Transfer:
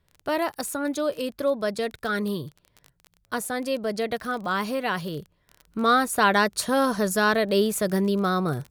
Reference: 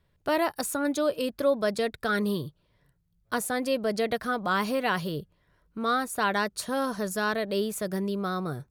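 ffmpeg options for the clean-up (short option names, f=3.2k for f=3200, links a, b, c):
-af "adeclick=t=4,asetnsamples=n=441:p=0,asendcmd='5.67 volume volume -6.5dB',volume=0dB"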